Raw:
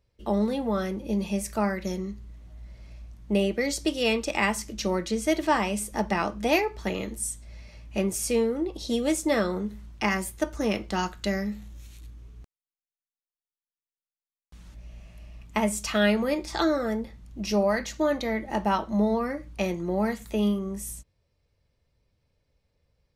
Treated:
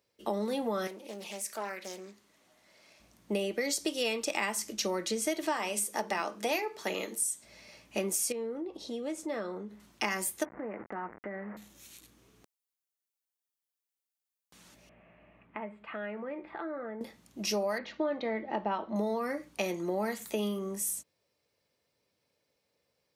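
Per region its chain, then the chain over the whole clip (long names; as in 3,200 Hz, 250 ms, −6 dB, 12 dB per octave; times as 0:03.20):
0:00.87–0:03.00: high-pass filter 570 Hz 6 dB per octave + downward compressor 1.5 to 1, threshold −45 dBFS + highs frequency-modulated by the lows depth 0.34 ms
0:05.53–0:07.44: high-pass filter 240 Hz 6 dB per octave + mains-hum notches 50/100/150/200/250/300/350/400/450 Hz
0:08.32–0:09.80: low-pass filter 1,600 Hz 6 dB per octave + downward compressor 2 to 1, threshold −38 dBFS
0:10.45–0:11.57: hold until the input has moved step −34.5 dBFS + elliptic low-pass filter 2,000 Hz, stop band 50 dB + downward compressor 12 to 1, threshold −32 dBFS
0:14.89–0:17.01: downward compressor 3 to 1, threshold −38 dBFS + inverse Chebyshev low-pass filter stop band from 5,500 Hz, stop band 50 dB
0:17.78–0:18.96: Bessel low-pass filter 2,500 Hz, order 6 + dynamic equaliser 1,600 Hz, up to −3 dB, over −42 dBFS, Q 1
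whole clip: high-pass filter 270 Hz 12 dB per octave; high-shelf EQ 6,400 Hz +7.5 dB; downward compressor, threshold −28 dBFS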